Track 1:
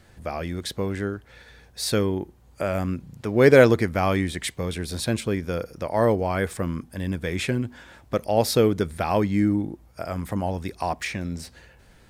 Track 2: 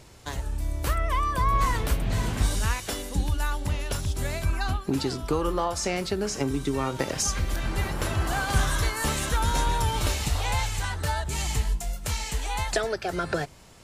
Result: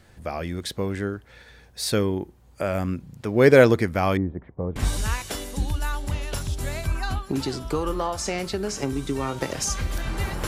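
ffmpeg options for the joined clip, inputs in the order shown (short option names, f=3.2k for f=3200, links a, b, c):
-filter_complex "[0:a]asettb=1/sr,asplit=3[a][b][c];[a]atrim=end=4.174[d];[b]atrim=start=4.17:end=4.76,asetpts=PTS-STARTPTS,afade=t=in:d=0.004:c=qsin,afade=t=out:st=0.586:d=0.004:c=qsin,lowpass=f=1k:w=0.5412,lowpass=f=1k:w=1.3066[e];[c]atrim=start=4.756[f];[d][e]acrossfade=d=0.004:c1=hsin:c2=qsin[g];[g][f]acrossfade=d=0.004:c1=qsin:c2=hsin,apad=whole_dur=10.47,atrim=end=10.47,atrim=end=4.762[h];[1:a]atrim=start=2.338:end=8.05[i];[h][i]acrossfade=d=0.004:c1=hsin:c2=hsin"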